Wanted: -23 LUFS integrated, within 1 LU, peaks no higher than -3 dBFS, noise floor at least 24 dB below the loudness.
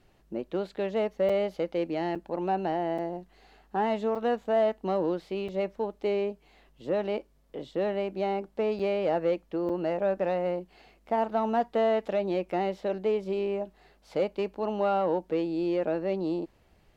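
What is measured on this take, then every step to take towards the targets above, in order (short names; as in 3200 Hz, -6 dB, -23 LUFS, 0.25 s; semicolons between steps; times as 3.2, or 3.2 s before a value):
dropouts 7; longest dropout 5.6 ms; loudness -29.5 LUFS; peak -15.5 dBFS; loudness target -23.0 LUFS
-> interpolate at 1.29/2.15/2.98/4.15/5.48/8.79/9.69, 5.6 ms; gain +6.5 dB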